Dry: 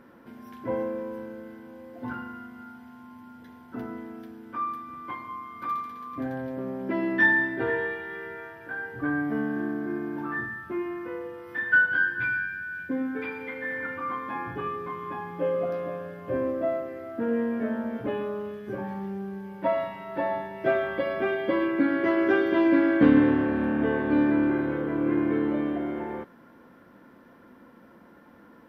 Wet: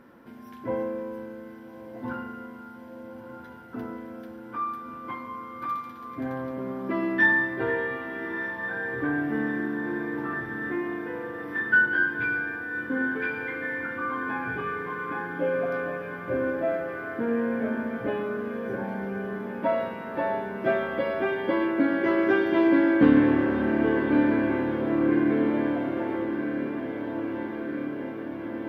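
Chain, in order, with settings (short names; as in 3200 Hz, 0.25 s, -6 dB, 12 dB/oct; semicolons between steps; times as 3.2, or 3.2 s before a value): diffused feedback echo 1.306 s, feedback 75%, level -9.5 dB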